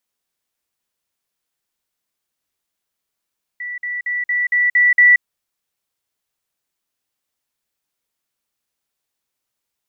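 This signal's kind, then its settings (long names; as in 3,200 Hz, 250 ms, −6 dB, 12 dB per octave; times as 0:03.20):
level staircase 1,960 Hz −24.5 dBFS, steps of 3 dB, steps 7, 0.18 s 0.05 s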